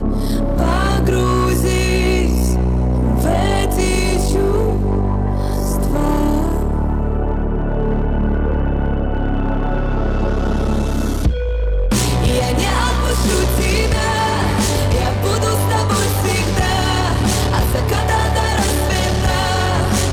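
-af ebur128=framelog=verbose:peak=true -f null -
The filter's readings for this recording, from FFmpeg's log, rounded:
Integrated loudness:
  I:         -17.3 LUFS
  Threshold: -27.3 LUFS
Loudness range:
  LRA:         3.3 LU
  Threshold: -37.4 LUFS
  LRA low:   -19.6 LUFS
  LRA high:  -16.3 LUFS
True peak:
  Peak:       -5.3 dBFS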